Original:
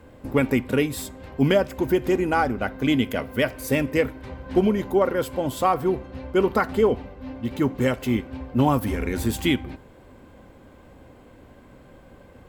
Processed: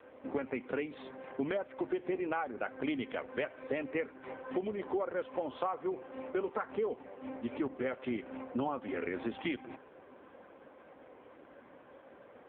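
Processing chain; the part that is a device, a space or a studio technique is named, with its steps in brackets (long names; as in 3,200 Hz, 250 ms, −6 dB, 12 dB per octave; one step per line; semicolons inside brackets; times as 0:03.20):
0:01.84–0:02.49: dynamic equaliser 4,200 Hz, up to +5 dB, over −44 dBFS, Q 1.5
voicemail (band-pass filter 370–2,800 Hz; downward compressor 6 to 1, threshold −31 dBFS, peak gain reduction 15 dB; AMR narrowband 5.9 kbit/s 8,000 Hz)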